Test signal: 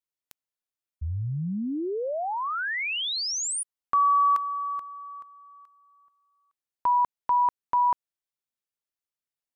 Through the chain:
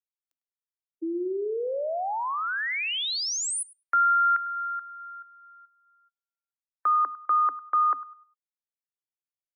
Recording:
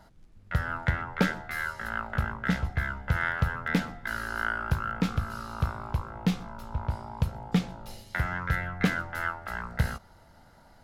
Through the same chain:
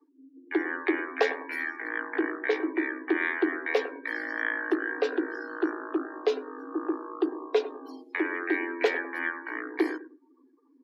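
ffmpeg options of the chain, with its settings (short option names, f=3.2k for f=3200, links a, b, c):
-filter_complex "[0:a]asplit=2[a][b];[b]adelay=102,lowpass=f=4k:p=1,volume=-14dB,asplit=2[c][d];[d]adelay=102,lowpass=f=4k:p=1,volume=0.37,asplit=2[e][f];[f]adelay=102,lowpass=f=4k:p=1,volume=0.37,asplit=2[g][h];[h]adelay=102,lowpass=f=4k:p=1,volume=0.37[i];[a][c][e][g][i]amix=inputs=5:normalize=0,afftdn=nr=31:nf=-44,afreqshift=250"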